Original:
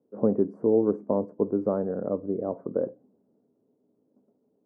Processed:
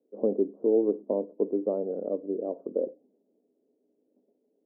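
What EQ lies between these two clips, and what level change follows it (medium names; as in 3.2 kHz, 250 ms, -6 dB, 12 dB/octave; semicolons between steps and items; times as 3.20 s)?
Butterworth band-pass 440 Hz, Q 0.98; distance through air 400 m; 0.0 dB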